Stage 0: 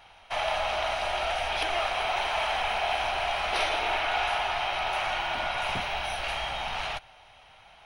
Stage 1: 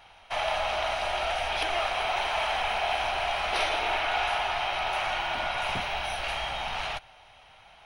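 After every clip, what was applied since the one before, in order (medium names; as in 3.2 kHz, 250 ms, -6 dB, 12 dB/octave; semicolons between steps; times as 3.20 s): no audible change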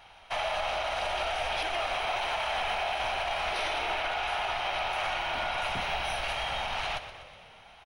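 on a send: frequency-shifting echo 122 ms, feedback 60%, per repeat -39 Hz, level -12 dB; on the sum: peak limiter -22 dBFS, peak gain reduction 6.5 dB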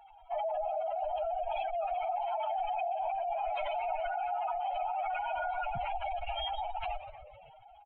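spectral contrast enhancement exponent 3.9; trim -1.5 dB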